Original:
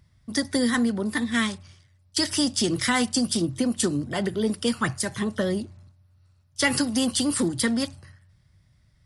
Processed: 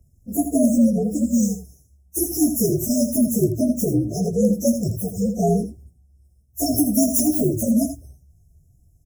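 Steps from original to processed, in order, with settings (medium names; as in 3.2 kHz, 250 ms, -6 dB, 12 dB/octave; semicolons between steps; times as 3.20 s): frequency axis rescaled in octaves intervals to 127%; 6.78–7.56 s: treble shelf 8.8 kHz +9 dB; in parallel at -5 dB: integer overflow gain 15.5 dB; on the sum: vibrato 3.3 Hz 23 cents; brick-wall FIR band-stop 730–5100 Hz; delay 81 ms -9.5 dB; trim +4 dB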